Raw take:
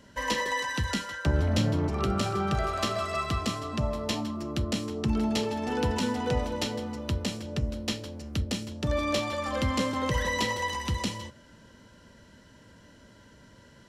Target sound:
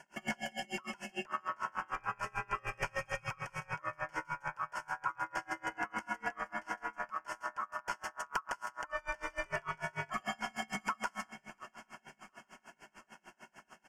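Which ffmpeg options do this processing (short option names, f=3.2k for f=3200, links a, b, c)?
-filter_complex "[0:a]acrossover=split=190|2400[a][b][c];[a]aeval=exprs='sgn(val(0))*max(abs(val(0))-0.00168,0)':c=same[d];[c]alimiter=level_in=6dB:limit=-24dB:level=0:latency=1:release=105,volume=-6dB[e];[d][b][e]amix=inputs=3:normalize=0,aeval=exprs='val(0)*sin(2*PI*1200*n/s)':c=same,asuperstop=centerf=3900:order=4:qfactor=2,acompressor=threshold=-37dB:ratio=6,aecho=1:1:700|1400|2100|2800|3500|4200:0.178|0.103|0.0598|0.0347|0.0201|0.0117,aeval=exprs='val(0)*pow(10,-30*(0.5-0.5*cos(2*PI*6.7*n/s))/20)':c=same,volume=7dB"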